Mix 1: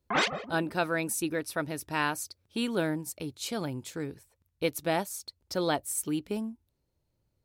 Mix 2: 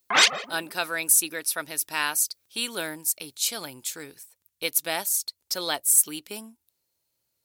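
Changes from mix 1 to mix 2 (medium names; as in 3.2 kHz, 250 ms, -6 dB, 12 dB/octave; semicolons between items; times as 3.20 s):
background +4.5 dB; master: add tilt EQ +4.5 dB/octave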